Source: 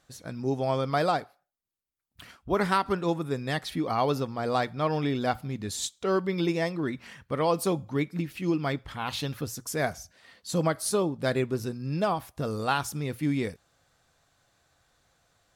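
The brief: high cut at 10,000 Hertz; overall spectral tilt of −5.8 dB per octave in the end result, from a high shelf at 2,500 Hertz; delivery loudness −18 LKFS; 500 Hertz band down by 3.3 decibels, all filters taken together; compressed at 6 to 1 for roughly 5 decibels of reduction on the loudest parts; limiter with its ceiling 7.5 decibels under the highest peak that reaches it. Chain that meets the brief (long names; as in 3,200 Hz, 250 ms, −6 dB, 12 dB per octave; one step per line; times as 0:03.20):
low-pass filter 10,000 Hz
parametric band 500 Hz −4 dB
high-shelf EQ 2,500 Hz −7.5 dB
downward compressor 6 to 1, threshold −28 dBFS
level +18.5 dB
brickwall limiter −7.5 dBFS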